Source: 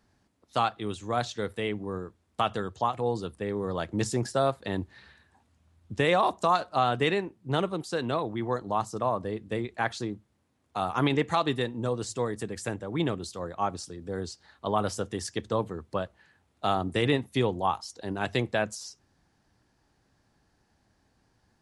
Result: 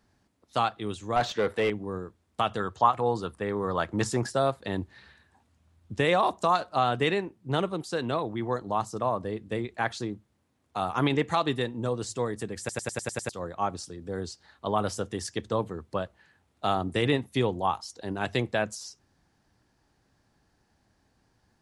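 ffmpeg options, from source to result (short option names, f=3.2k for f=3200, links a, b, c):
-filter_complex "[0:a]asettb=1/sr,asplit=3[a][b][c];[a]atrim=end=1.164[d];[b]atrim=start=1.16:end=1.7,asetpts=PTS-STARTPTS,afade=t=in:d=0.004:c=qsin,afade=t=out:st=0.536:d=0.004:c=qsin,asplit=2[e][f];[f]highpass=f=720:p=1,volume=21dB,asoftclip=type=tanh:threshold=-13.5dB[g];[e][g]amix=inputs=2:normalize=0,lowpass=f=1.3k:p=1,volume=-6dB[h];[c]atrim=start=1.696[i];[d][h]acrossfade=d=0.004:c1=hsin:c2=qsin[j];[j][i]acrossfade=d=0.004:c1=qsin:c2=hsin,asettb=1/sr,asplit=3[k][l][m];[k]atrim=end=2.604[n];[l]atrim=start=2.6:end=4.3,asetpts=PTS-STARTPTS,afade=t=in:d=0.004:c=qsin,afade=t=out:st=1.696:d=0.004:c=qsin,equalizer=f=1.2k:w=1:g=8[o];[m]atrim=start=4.296[p];[n][o]acrossfade=d=0.004:c1=hsin:c2=qsin[q];[q][p]acrossfade=d=0.004:c1=qsin:c2=hsin,asplit=8[r][s][t][u][v][w][x][y];[r]atrim=end=12.692[z];[s]atrim=start=12.588:end=12.692[aa];[t]atrim=start=12.588:end=12.692[ab];[u]atrim=start=12.588:end=12.692[ac];[v]atrim=start=12.588:end=12.692[ad];[w]atrim=start=12.588:end=12.692[ae];[x]atrim=start=12.588:end=12.692[af];[y]atrim=start=13.288[ag];[z][aa]acrossfade=d=0.004:c1=hsin:c2=hsin[ah];[ah][ab]acrossfade=d=0.004:c1=hsin:c2=hsin[ai];[ai][ac]acrossfade=d=0.004:c1=hsin:c2=hsin[aj];[aj][ad]acrossfade=d=0.004:c1=hsin:c2=hsin[ak];[ak][ae]acrossfade=d=0.004:c1=hsin:c2=hsin[al];[al][af]acrossfade=d=0.004:c1=hsin:c2=hsin[am];[am][ag]acrossfade=d=0.004:c1=hsin:c2=hsin"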